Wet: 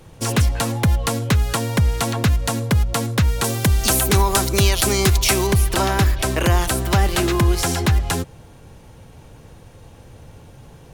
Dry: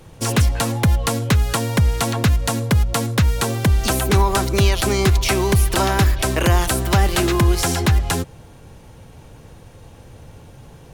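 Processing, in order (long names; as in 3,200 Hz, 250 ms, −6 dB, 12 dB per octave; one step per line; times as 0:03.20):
0:03.44–0:05.47: high-shelf EQ 4,400 Hz +9 dB
level −1 dB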